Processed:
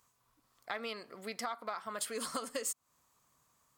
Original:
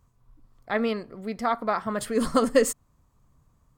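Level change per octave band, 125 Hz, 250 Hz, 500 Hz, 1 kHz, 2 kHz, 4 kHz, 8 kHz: −20.0, −20.5, −17.0, −12.5, −10.5, −5.0, −5.0 decibels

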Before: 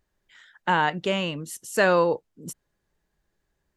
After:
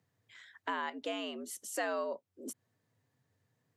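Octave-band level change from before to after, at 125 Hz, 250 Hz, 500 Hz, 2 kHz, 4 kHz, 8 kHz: below −35 dB, −13.0 dB, −14.5 dB, −14.5 dB, −12.0 dB, −6.5 dB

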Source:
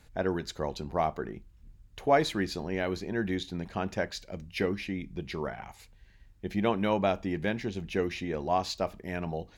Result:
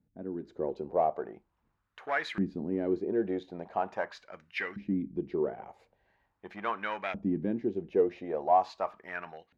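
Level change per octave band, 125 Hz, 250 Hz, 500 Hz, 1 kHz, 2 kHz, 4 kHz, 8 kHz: −6.5 dB, −1.5 dB, −1.0 dB, +0.5 dB, −1.5 dB, −10.0 dB, below −15 dB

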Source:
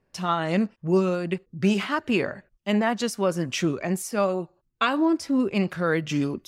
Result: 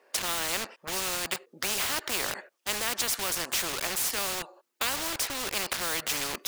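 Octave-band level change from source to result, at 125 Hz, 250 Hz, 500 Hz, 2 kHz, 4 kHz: −19.0, −20.0, −13.0, −1.5, +5.0 decibels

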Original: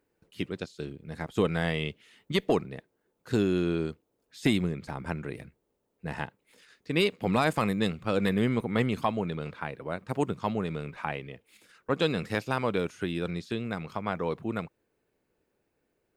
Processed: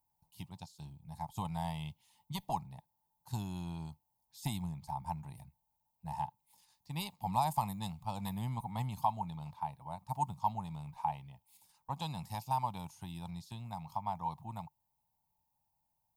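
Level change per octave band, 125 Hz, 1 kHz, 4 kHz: −7.0, −0.5, −12.0 decibels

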